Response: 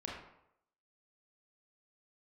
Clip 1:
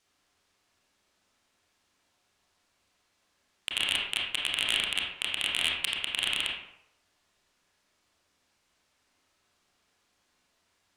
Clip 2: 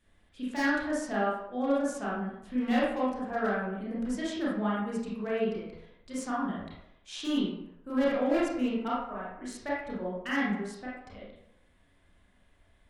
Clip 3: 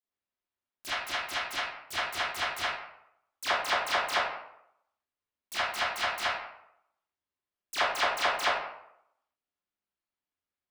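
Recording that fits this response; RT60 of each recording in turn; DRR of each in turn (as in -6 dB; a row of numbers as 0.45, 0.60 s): 1; 0.80, 0.80, 0.80 s; -3.5, -8.0, -16.5 dB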